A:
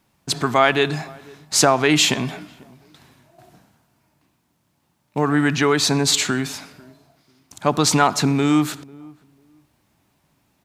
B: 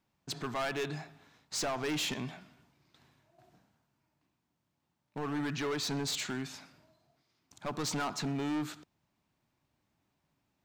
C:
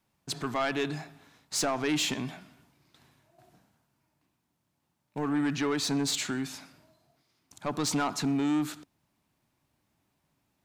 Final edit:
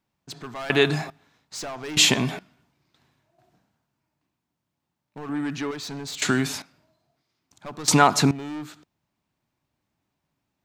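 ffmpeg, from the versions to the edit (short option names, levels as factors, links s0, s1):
-filter_complex "[0:a]asplit=4[s0][s1][s2][s3];[1:a]asplit=6[s4][s5][s6][s7][s8][s9];[s4]atrim=end=0.702[s10];[s0]atrim=start=0.698:end=1.102[s11];[s5]atrim=start=1.098:end=1.972[s12];[s1]atrim=start=1.968:end=2.392[s13];[s6]atrim=start=2.388:end=5.292[s14];[2:a]atrim=start=5.288:end=5.712[s15];[s7]atrim=start=5.708:end=6.222[s16];[s2]atrim=start=6.218:end=6.622[s17];[s8]atrim=start=6.618:end=7.882[s18];[s3]atrim=start=7.878:end=8.312[s19];[s9]atrim=start=8.308[s20];[s10][s11]acrossfade=d=0.004:c1=hsin:c2=hsin[s21];[s21][s12]acrossfade=d=0.004:c1=hsin:c2=hsin[s22];[s22][s13]acrossfade=d=0.004:c1=hsin:c2=hsin[s23];[s23][s14]acrossfade=d=0.004:c1=hsin:c2=hsin[s24];[s24][s15]acrossfade=d=0.004:c1=hsin:c2=hsin[s25];[s25][s16]acrossfade=d=0.004:c1=hsin:c2=hsin[s26];[s26][s17]acrossfade=d=0.004:c1=hsin:c2=hsin[s27];[s27][s18]acrossfade=d=0.004:c1=hsin:c2=hsin[s28];[s28][s19]acrossfade=d=0.004:c1=hsin:c2=hsin[s29];[s29][s20]acrossfade=d=0.004:c1=hsin:c2=hsin"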